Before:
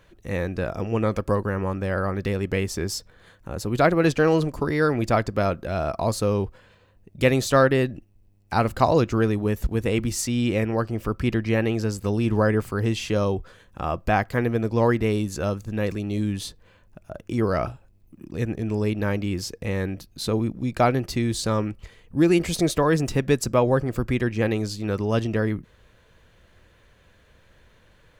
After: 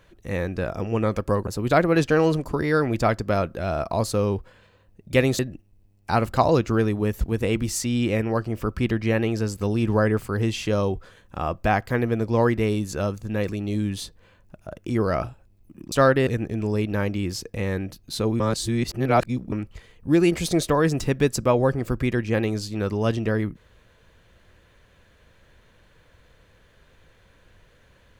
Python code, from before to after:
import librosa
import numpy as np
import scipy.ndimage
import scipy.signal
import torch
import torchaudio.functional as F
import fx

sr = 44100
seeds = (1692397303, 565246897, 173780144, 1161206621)

y = fx.edit(x, sr, fx.cut(start_s=1.47, length_s=2.08),
    fx.move(start_s=7.47, length_s=0.35, to_s=18.35),
    fx.reverse_span(start_s=20.48, length_s=1.12), tone=tone)